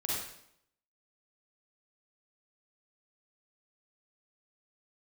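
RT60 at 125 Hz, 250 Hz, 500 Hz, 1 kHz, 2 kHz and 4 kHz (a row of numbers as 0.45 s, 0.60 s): 0.75 s, 0.80 s, 0.75 s, 0.70 s, 0.65 s, 0.65 s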